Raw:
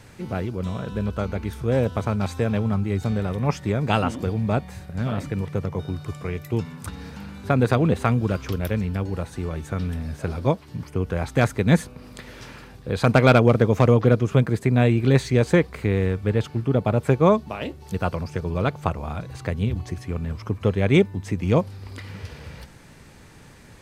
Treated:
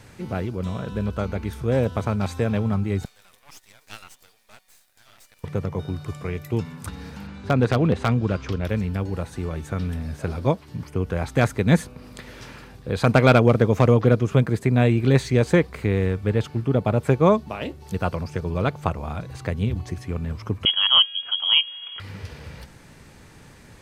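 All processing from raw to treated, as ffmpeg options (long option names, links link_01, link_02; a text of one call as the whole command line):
ffmpeg -i in.wav -filter_complex "[0:a]asettb=1/sr,asplit=3[link_01][link_02][link_03];[link_01]atrim=end=3.054[link_04];[link_02]atrim=start=3.05:end=5.44,asetpts=PTS-STARTPTS,afade=type=in:duration=0.004:curve=qsin,afade=type=out:start_time=2.386:duration=0.004:curve=qsin,highpass=580,aderivative,aeval=exprs='max(val(0),0)':channel_layout=same[link_05];[link_03]atrim=start=5.436[link_06];[link_04][link_05]acrossfade=duration=0.004:curve1=hsin:curve2=qsin[link_07];[link_07][link_06]acrossfade=duration=0.004:curve1=qsin:curve2=hsin,asettb=1/sr,asplit=3[link_08][link_09][link_10];[link_08]atrim=end=7.274[link_11];[link_09]atrim=start=7.27:end=8.69,asetpts=PTS-STARTPTS,afade=type=in:duration=0.004:curve=qsin,afade=type=out:start_time=1.416:duration=0.004:curve=qsin,lowpass=6000,aeval=exprs='0.398*(abs(mod(val(0)/0.398+3,4)-2)-1)':channel_layout=same[link_12];[link_10]atrim=start=8.686[link_13];[link_11][link_12]acrossfade=duration=0.004:curve1=hsin:curve2=qsin[link_14];[link_14][link_13]acrossfade=duration=0.004:curve1=qsin:curve2=hsin,asettb=1/sr,asplit=3[link_15][link_16][link_17];[link_15]atrim=end=20.654[link_18];[link_16]atrim=start=20.65:end=22,asetpts=PTS-STARTPTS,afade=type=in:duration=0.004:curve=qsin,afade=type=out:start_time=1.346:duration=0.004:curve=qsin,aeval=exprs='val(0)+0.00631*sin(2*PI*540*n/s)':channel_layout=same,lowpass=frequency=2900:width_type=q:width=0.5098,lowpass=frequency=2900:width_type=q:width=0.6013,lowpass=frequency=2900:width_type=q:width=0.9,lowpass=frequency=2900:width_type=q:width=2.563,afreqshift=-3400[link_19];[link_17]atrim=start=21.996[link_20];[link_18][link_19]acrossfade=duration=0.004:curve1=hsin:curve2=qsin[link_21];[link_21][link_20]acrossfade=duration=0.004:curve1=qsin:curve2=hsin" out.wav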